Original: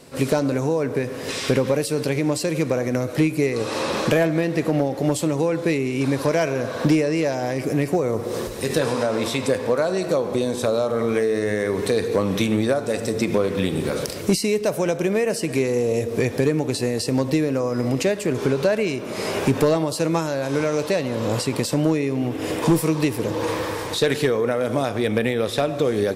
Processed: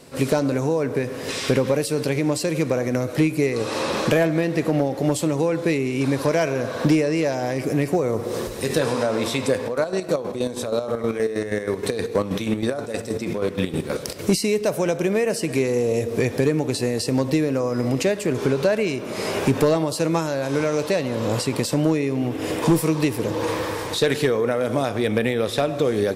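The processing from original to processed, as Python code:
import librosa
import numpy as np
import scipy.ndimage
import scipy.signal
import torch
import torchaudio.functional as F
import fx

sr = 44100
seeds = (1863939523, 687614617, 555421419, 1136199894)

y = fx.chopper(x, sr, hz=6.3, depth_pct=60, duty_pct=45, at=(9.61, 14.19))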